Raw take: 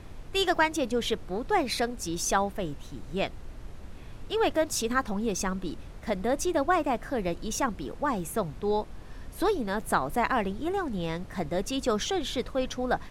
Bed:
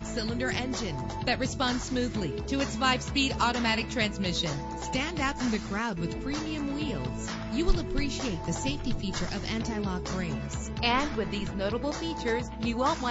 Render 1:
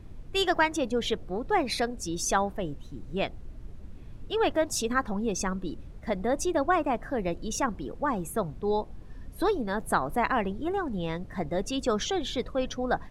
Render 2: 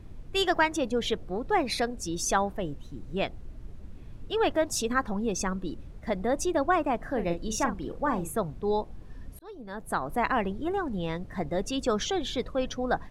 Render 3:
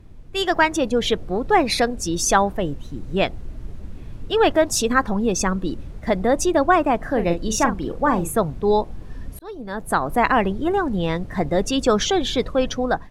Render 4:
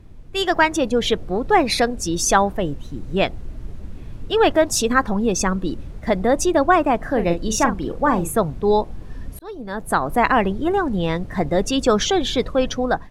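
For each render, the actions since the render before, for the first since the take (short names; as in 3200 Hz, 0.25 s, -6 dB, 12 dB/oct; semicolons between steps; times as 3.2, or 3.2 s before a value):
denoiser 10 dB, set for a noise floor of -44 dBFS
6.97–8.35 doubler 41 ms -8 dB; 9.39–10.28 fade in
AGC gain up to 9.5 dB
gain +1 dB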